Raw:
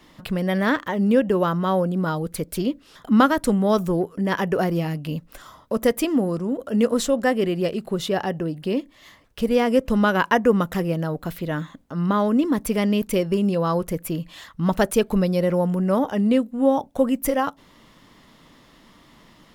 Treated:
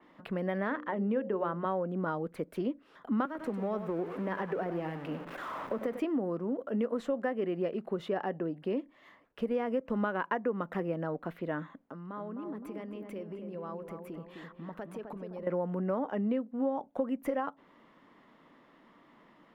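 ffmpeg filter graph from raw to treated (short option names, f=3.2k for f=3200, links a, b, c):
-filter_complex "[0:a]asettb=1/sr,asplit=3[a][b][c];[a]atrim=end=0.674[d];[b]atrim=start=0.67:end=1.65,asetpts=PTS-STARTPTS,afade=t=in:d=0.004:c=qsin,afade=t=out:st=0.976:d=0.004:c=qsin,highshelf=f=7k:g=-7,bandreject=f=60:t=h:w=6,bandreject=f=120:t=h:w=6,bandreject=f=180:t=h:w=6,bandreject=f=240:t=h:w=6,bandreject=f=300:t=h:w=6,bandreject=f=360:t=h:w=6,bandreject=f=420:t=h:w=6,bandreject=f=480:t=h:w=6,bandreject=f=540:t=h:w=6[e];[c]atrim=start=1.646[f];[d][e]acrossfade=d=0.004:c1=hsin:c2=qsin[g];[g][f]acrossfade=d=0.004:c1=qsin:c2=hsin,asettb=1/sr,asplit=3[h][i][j];[h]atrim=end=3.254[k];[i]atrim=start=3.25:end=6,asetpts=PTS-STARTPTS,afade=t=in:d=0.004:c=qsin,afade=t=out:st=2.746:d=0.004:c=qsin,aeval=exprs='val(0)+0.5*0.0422*sgn(val(0))':c=same,acrossover=split=81|200[l][m][n];[l]acompressor=threshold=-42dB:ratio=4[o];[m]acompressor=threshold=-36dB:ratio=4[p];[n]acompressor=threshold=-25dB:ratio=4[q];[o][p][q]amix=inputs=3:normalize=0,aecho=1:1:99:0.299,atrim=end_sample=121275[r];[j]atrim=start=5.996[s];[k][r]acrossfade=d=0.004:c1=hsin:c2=qsin[t];[t][s]acrossfade=d=0.004:c1=qsin:c2=hsin,asettb=1/sr,asplit=3[u][v][w];[u]atrim=end=11.784[x];[v]atrim=start=11.78:end=15.47,asetpts=PTS-STARTPTS,afade=t=in:d=0.004:c=qsin,afade=t=out:st=3.686:d=0.004:c=qsin,acompressor=threshold=-31dB:ratio=8:attack=3.2:release=140:knee=1:detection=peak,asplit=2[y][z];[z]adelay=258,lowpass=f=1.4k:p=1,volume=-5.5dB,asplit=2[aa][ab];[ab]adelay=258,lowpass=f=1.4k:p=1,volume=0.51,asplit=2[ac][ad];[ad]adelay=258,lowpass=f=1.4k:p=1,volume=0.51,asplit=2[ae][af];[af]adelay=258,lowpass=f=1.4k:p=1,volume=0.51,asplit=2[ag][ah];[ah]adelay=258,lowpass=f=1.4k:p=1,volume=0.51,asplit=2[ai][aj];[aj]adelay=258,lowpass=f=1.4k:p=1,volume=0.51[ak];[y][aa][ac][ae][ag][ai][ak]amix=inputs=7:normalize=0,atrim=end_sample=162729[al];[w]atrim=start=15.466[am];[x][al]acrossfade=d=0.004:c1=hsin:c2=qsin[an];[an][am]acrossfade=d=0.004:c1=qsin:c2=hsin,acrossover=split=190 2400:gain=0.126 1 0.1[ao][ap][aq];[ao][ap][aq]amix=inputs=3:normalize=0,acompressor=threshold=-22dB:ratio=6,adynamicequalizer=threshold=0.00355:dfrequency=4000:dqfactor=0.7:tfrequency=4000:tqfactor=0.7:attack=5:release=100:ratio=0.375:range=2:mode=cutabove:tftype=highshelf,volume=-5.5dB"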